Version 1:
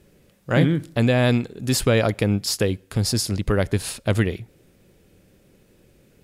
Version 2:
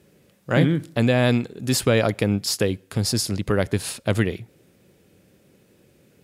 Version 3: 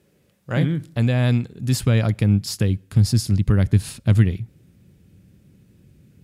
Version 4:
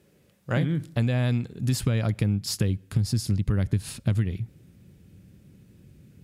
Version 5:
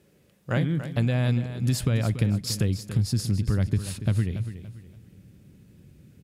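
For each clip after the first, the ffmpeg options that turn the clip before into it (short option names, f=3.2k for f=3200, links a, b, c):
-af "highpass=94"
-af "asubboost=boost=9:cutoff=180,volume=-4.5dB"
-af "acompressor=threshold=-20dB:ratio=10"
-af "aecho=1:1:285|570|855:0.266|0.0878|0.029"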